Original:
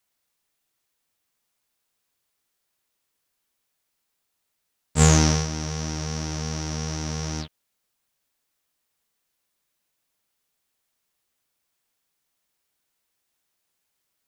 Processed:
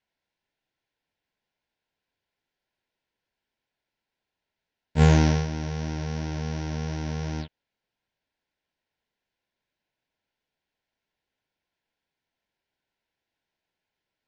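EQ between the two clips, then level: Butterworth band-stop 1200 Hz, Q 4.5; LPF 8200 Hz 24 dB/oct; air absorption 220 m; 0.0 dB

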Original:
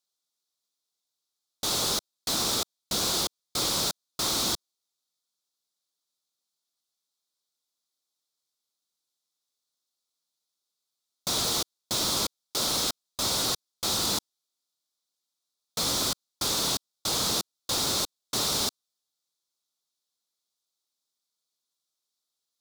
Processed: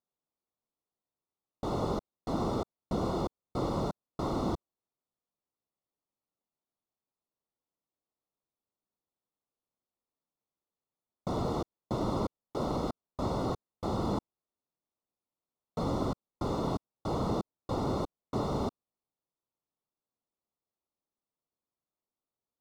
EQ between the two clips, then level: polynomial smoothing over 65 samples; low shelf 440 Hz +6.5 dB; 0.0 dB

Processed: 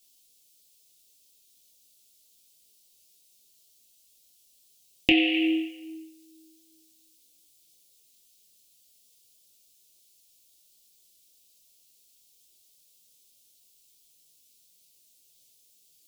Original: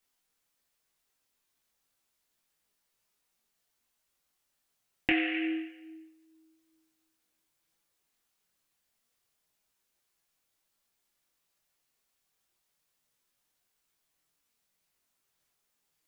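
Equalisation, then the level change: Chebyshev band-stop 550–3300 Hz, order 2; high shelf 2200 Hz +11.5 dB; +7.5 dB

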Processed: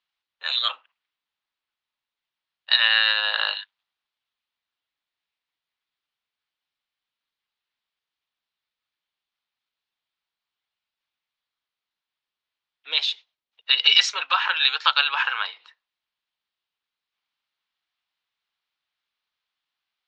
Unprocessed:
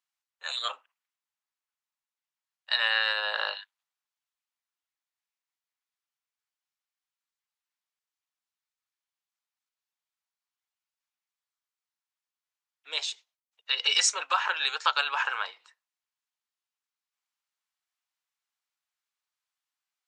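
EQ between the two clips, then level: air absorption 230 m; bell 3700 Hz +10 dB 1.2 oct; dynamic EQ 470 Hz, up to -8 dB, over -46 dBFS, Q 0.77; +6.0 dB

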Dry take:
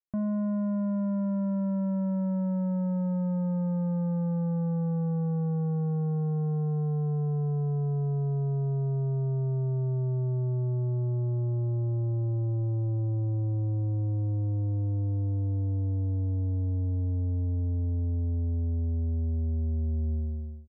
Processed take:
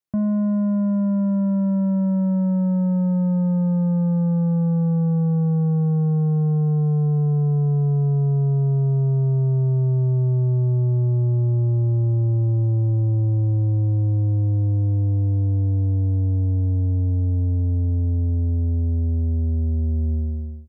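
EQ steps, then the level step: HPF 95 Hz; low shelf 180 Hz +9 dB; +4.5 dB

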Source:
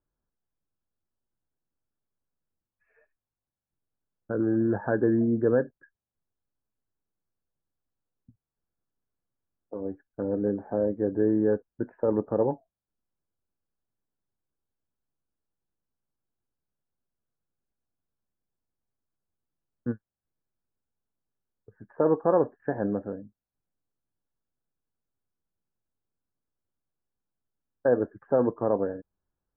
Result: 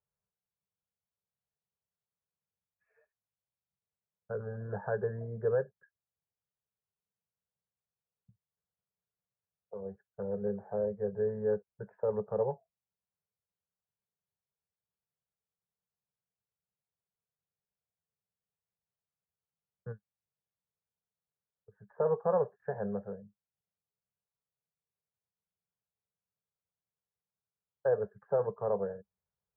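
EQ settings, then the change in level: HPF 86 Hz; elliptic band-stop 200–410 Hz, stop band 40 dB; LPF 1400 Hz 6 dB/oct; -4.0 dB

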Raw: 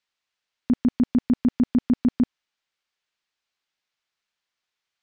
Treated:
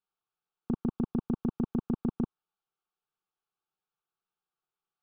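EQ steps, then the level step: Butterworth band-stop 990 Hz, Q 6.6; LPF 1800 Hz 12 dB/oct; fixed phaser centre 390 Hz, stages 8; 0.0 dB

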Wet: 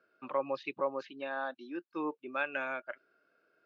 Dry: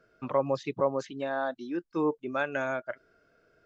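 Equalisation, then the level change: dynamic EQ 2600 Hz, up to +7 dB, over -51 dBFS, Q 1.6; speaker cabinet 420–3900 Hz, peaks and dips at 450 Hz -8 dB, 670 Hz -8 dB, 970 Hz -4 dB, 1400 Hz -3 dB, 2000 Hz -8 dB, 3300 Hz -7 dB; 0.0 dB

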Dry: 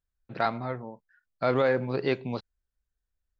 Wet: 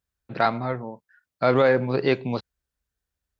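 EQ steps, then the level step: HPF 63 Hz; +5.5 dB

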